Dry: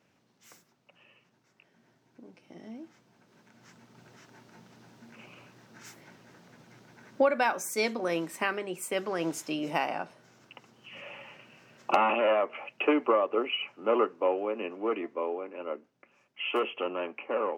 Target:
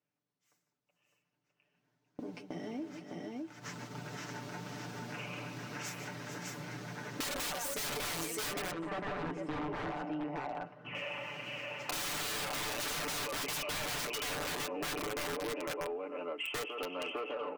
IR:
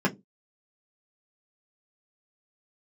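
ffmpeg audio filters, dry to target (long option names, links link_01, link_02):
-filter_complex "[0:a]dynaudnorm=framelen=280:gausssize=11:maxgain=10.5dB,agate=range=-26dB:threshold=-47dB:ratio=16:detection=peak,aecho=1:1:152|447|607:0.224|0.2|0.562,aeval=exprs='(mod(7.08*val(0)+1,2)-1)/7.08':channel_layout=same,asettb=1/sr,asplit=3[link_01][link_02][link_03];[link_01]atrim=end=8.714[link_04];[link_02]atrim=start=8.71:end=10.95,asetpts=PTS-STARTPTS,afade=type=in:duration=0.004:curve=qsin,afade=type=out:start_time=2.236:duration=0.004:curve=qsin,lowpass=1500[link_05];[link_03]atrim=start=10.946[link_06];[link_04][link_05]acrossfade=duration=0.004:curve1=hsin:curve2=qsin[link_07];[link_07][link_06]acrossfade=duration=0.004:curve1=qsin:curve2=hsin,aecho=1:1:6.8:0.64,alimiter=limit=-16.5dB:level=0:latency=1:release=222,asoftclip=type=tanh:threshold=-18dB,acompressor=threshold=-45dB:ratio=3,volume=3.5dB"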